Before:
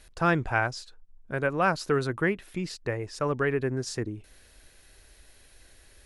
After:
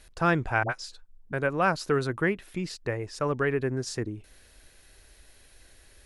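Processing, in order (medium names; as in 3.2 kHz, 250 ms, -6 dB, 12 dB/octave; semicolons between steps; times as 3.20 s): 0.63–1.33 s: phase dispersion highs, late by 69 ms, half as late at 660 Hz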